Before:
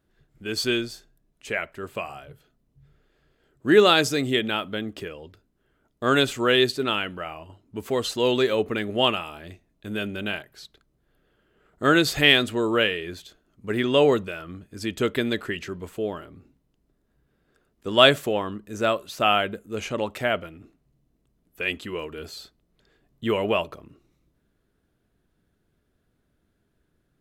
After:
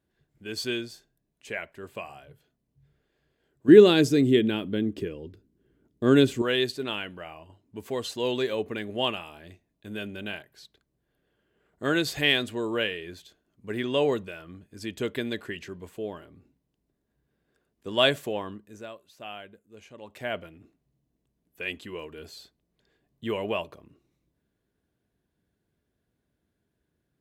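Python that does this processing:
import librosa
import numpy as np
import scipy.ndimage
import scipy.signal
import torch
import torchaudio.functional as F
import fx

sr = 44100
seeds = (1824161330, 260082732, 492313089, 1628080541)

y = fx.low_shelf_res(x, sr, hz=500.0, db=9.5, q=1.5, at=(3.68, 6.42))
y = fx.edit(y, sr, fx.fade_down_up(start_s=18.51, length_s=1.86, db=-13.0, fade_s=0.36), tone=tone)
y = scipy.signal.sosfilt(scipy.signal.butter(2, 53.0, 'highpass', fs=sr, output='sos'), y)
y = fx.notch(y, sr, hz=1300.0, q=7.7)
y = y * 10.0 ** (-6.0 / 20.0)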